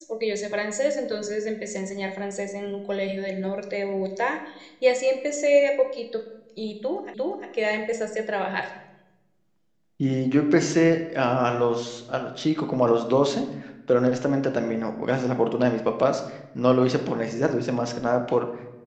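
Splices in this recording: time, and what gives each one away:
7.14 s: repeat of the last 0.35 s

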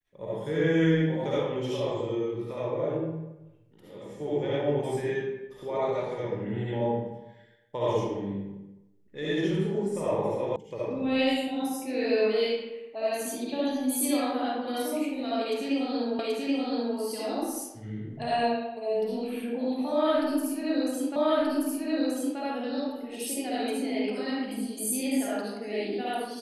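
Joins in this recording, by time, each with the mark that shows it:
10.56 s: sound stops dead
16.19 s: repeat of the last 0.78 s
21.16 s: repeat of the last 1.23 s

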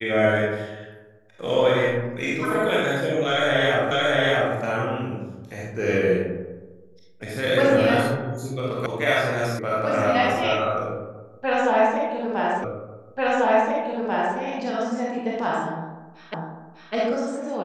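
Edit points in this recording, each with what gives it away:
3.91 s: repeat of the last 0.63 s
8.86 s: sound stops dead
9.59 s: sound stops dead
12.64 s: repeat of the last 1.74 s
16.34 s: repeat of the last 0.6 s

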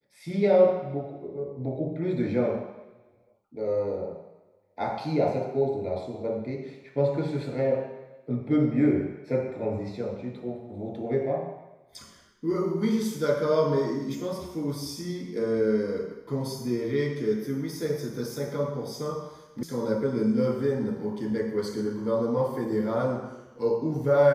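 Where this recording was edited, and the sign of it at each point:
19.63 s: sound stops dead

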